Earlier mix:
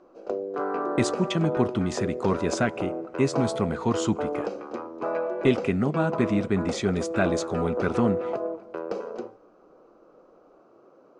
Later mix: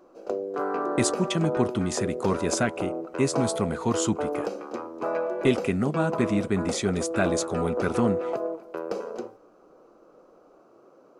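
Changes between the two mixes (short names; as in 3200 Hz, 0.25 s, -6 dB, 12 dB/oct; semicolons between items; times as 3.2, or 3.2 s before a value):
speech: send -9.5 dB; master: remove air absorption 88 m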